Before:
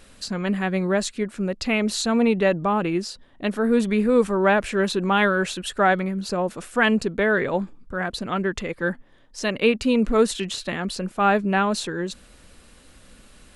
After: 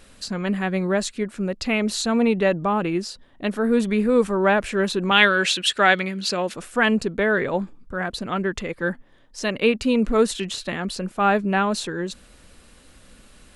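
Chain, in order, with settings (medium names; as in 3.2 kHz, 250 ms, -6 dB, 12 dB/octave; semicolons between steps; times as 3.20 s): 5.11–6.54 s: frequency weighting D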